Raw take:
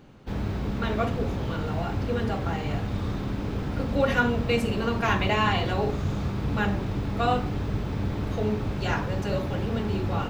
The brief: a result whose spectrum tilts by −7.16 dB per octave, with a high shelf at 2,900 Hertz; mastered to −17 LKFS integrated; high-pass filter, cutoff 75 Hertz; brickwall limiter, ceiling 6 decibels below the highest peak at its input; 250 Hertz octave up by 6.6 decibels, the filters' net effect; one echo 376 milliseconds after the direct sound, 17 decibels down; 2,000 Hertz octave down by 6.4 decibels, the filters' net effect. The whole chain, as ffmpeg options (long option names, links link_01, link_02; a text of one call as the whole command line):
ffmpeg -i in.wav -af "highpass=75,equalizer=frequency=250:width_type=o:gain=8.5,equalizer=frequency=2000:width_type=o:gain=-6.5,highshelf=frequency=2900:gain=-8.5,alimiter=limit=-16dB:level=0:latency=1,aecho=1:1:376:0.141,volume=9dB" out.wav